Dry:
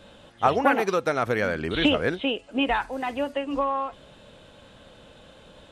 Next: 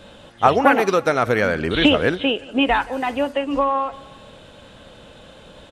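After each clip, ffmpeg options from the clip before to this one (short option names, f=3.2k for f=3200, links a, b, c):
-af "aecho=1:1:175|350|525:0.0891|0.0401|0.018,volume=6dB"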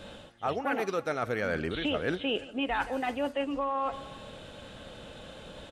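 -af "bandreject=f=1k:w=14,areverse,acompressor=threshold=-25dB:ratio=10,areverse,volume=-2dB"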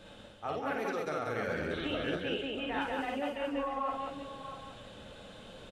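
-filter_complex "[0:a]asplit=2[a][b];[b]aecho=0:1:52.48|189.5:0.708|0.794[c];[a][c]amix=inputs=2:normalize=0,flanger=delay=5.7:depth=6.6:regen=-63:speed=0.87:shape=triangular,asplit=2[d][e];[e]aecho=0:1:637:0.282[f];[d][f]amix=inputs=2:normalize=0,volume=-3dB"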